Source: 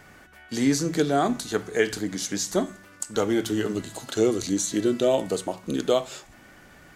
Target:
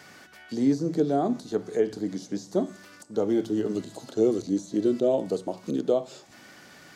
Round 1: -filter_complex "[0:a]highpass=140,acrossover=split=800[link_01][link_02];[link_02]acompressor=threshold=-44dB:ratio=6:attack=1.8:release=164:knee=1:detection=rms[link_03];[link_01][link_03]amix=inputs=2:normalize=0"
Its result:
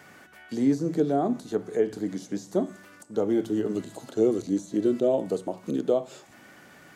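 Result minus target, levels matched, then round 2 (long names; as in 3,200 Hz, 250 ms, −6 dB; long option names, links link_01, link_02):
4,000 Hz band −3.0 dB
-filter_complex "[0:a]highpass=140,equalizer=frequency=4800:width=1.2:gain=9,acrossover=split=800[link_01][link_02];[link_02]acompressor=threshold=-44dB:ratio=6:attack=1.8:release=164:knee=1:detection=rms[link_03];[link_01][link_03]amix=inputs=2:normalize=0"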